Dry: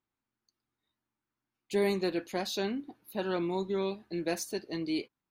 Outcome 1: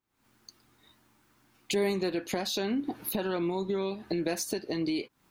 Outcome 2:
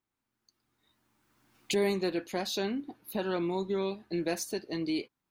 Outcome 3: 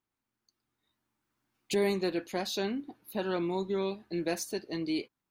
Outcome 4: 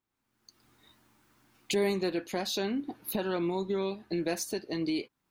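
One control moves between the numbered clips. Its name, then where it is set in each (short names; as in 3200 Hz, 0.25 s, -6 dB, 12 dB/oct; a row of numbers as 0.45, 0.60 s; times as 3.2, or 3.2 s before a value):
recorder AGC, rising by: 87, 14, 5.5, 35 dB/s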